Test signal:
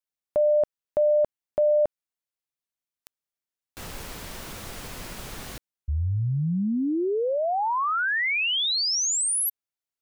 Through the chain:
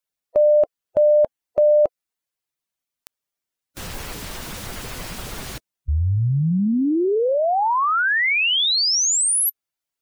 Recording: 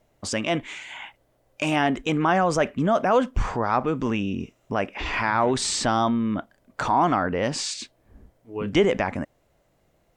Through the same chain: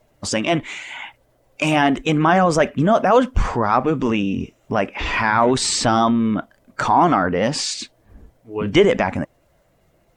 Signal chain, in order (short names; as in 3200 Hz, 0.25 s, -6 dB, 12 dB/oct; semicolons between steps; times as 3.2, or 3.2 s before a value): bin magnitudes rounded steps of 15 dB; gain +6 dB